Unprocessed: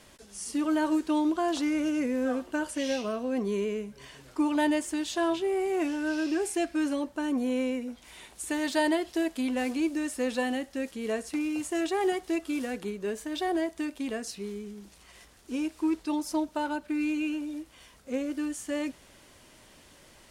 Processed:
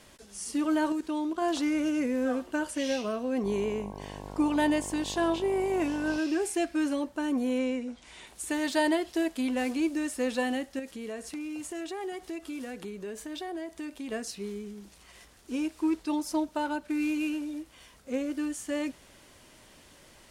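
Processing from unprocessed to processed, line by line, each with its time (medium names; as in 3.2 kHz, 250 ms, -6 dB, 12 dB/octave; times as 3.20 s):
0.92–1.42 s: level held to a coarse grid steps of 10 dB
3.43–6.17 s: mains buzz 50 Hz, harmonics 22, -42 dBFS -2 dB/octave
7.58–8.27 s: low-pass 8.8 kHz 24 dB/octave
10.79–14.12 s: compression 3:1, threshold -36 dBFS
16.85–17.50 s: CVSD coder 64 kbps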